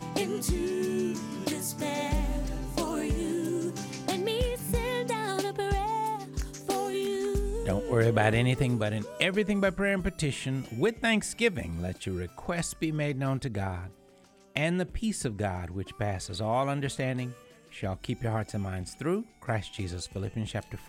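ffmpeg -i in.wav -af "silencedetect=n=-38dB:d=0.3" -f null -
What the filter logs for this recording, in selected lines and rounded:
silence_start: 13.88
silence_end: 14.56 | silence_duration: 0.68
silence_start: 17.32
silence_end: 17.74 | silence_duration: 0.42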